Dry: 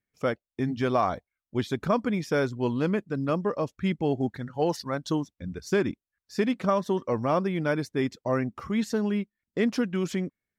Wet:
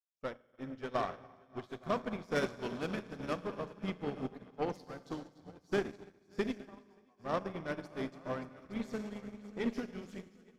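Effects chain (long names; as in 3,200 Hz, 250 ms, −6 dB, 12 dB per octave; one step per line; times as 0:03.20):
0:02.35–0:03.48: high-shelf EQ 2,200 Hz +9 dB
0:06.60–0:07.20: formant resonators in series a
echo machine with several playback heads 289 ms, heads all three, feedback 44%, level −14 dB
four-comb reverb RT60 2.5 s, combs from 30 ms, DRR 5 dB
harmonic generator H 6 −18 dB, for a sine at −11 dBFS
expander for the loud parts 2.5 to 1, over −41 dBFS
level −7.5 dB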